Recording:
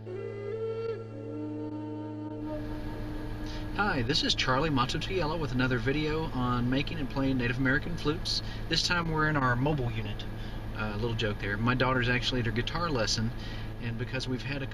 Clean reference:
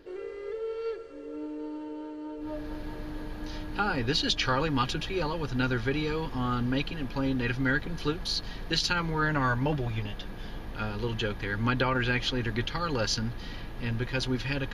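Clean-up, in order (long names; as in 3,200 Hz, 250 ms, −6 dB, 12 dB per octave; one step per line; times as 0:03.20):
hum removal 109.1 Hz, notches 8
repair the gap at 0:00.87/0:01.70/0:02.29/0:04.08/0:09.04/0:09.40, 11 ms
level correction +3.5 dB, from 0:13.73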